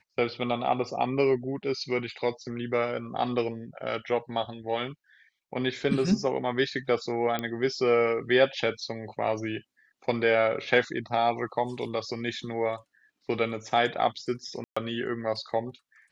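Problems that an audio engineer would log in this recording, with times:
0:07.39: click −16 dBFS
0:14.64–0:14.77: drop-out 125 ms

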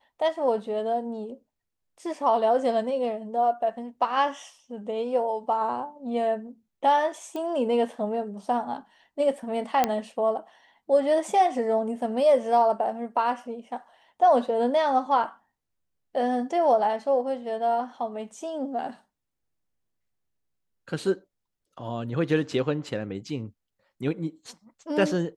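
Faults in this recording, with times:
0:07.36: click −22 dBFS
0:09.84: click −8 dBFS

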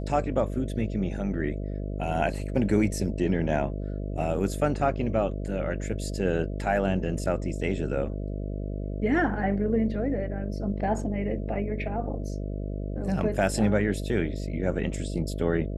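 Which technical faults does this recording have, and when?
mains buzz 50 Hz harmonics 13 −32 dBFS

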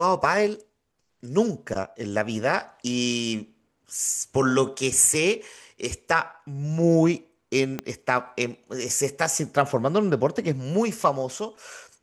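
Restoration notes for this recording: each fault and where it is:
0:07.79: click −14 dBFS

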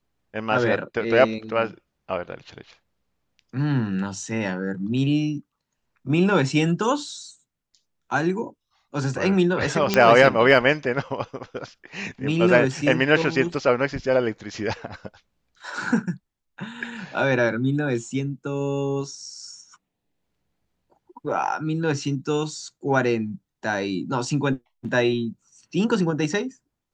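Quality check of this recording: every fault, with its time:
0:09.94: click −4 dBFS

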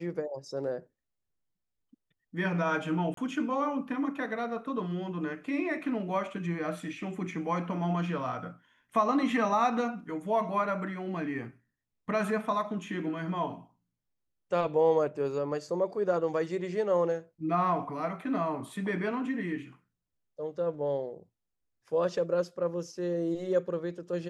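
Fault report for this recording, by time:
0:03.14–0:03.17: drop-out 33 ms

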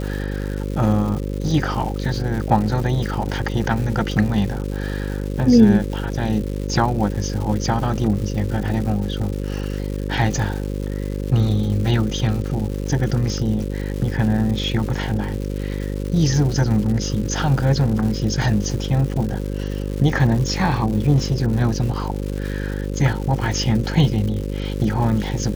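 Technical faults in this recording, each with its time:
mains buzz 50 Hz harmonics 11 −25 dBFS
surface crackle 290 per second −28 dBFS

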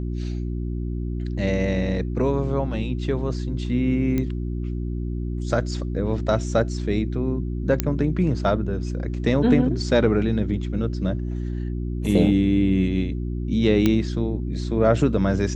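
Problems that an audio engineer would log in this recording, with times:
mains hum 60 Hz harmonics 6 −27 dBFS
0:04.18: click −13 dBFS
0:07.80: click −5 dBFS
0:13.86: click −7 dBFS

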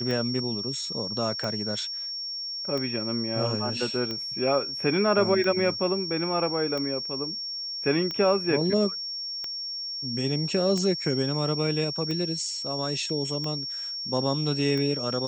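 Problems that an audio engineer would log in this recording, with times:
scratch tick 45 rpm −19 dBFS
whistle 5,500 Hz −31 dBFS

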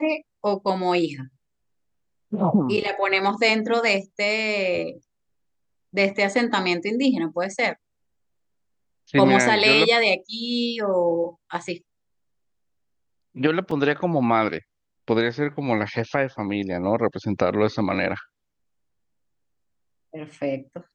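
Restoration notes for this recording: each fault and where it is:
0:13.71: drop-out 3 ms

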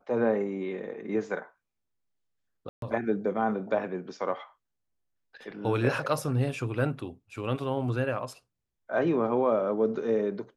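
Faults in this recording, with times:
0:02.69–0:02.82: drop-out 132 ms

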